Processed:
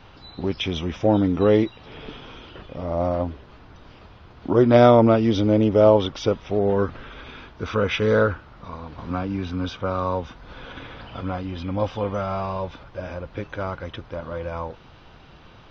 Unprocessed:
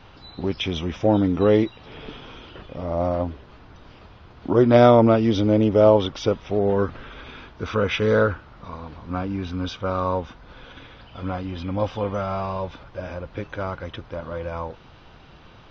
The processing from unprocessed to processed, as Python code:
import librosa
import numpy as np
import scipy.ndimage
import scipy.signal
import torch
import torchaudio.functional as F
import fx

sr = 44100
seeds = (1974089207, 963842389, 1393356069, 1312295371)

y = fx.band_squash(x, sr, depth_pct=40, at=(8.98, 11.21))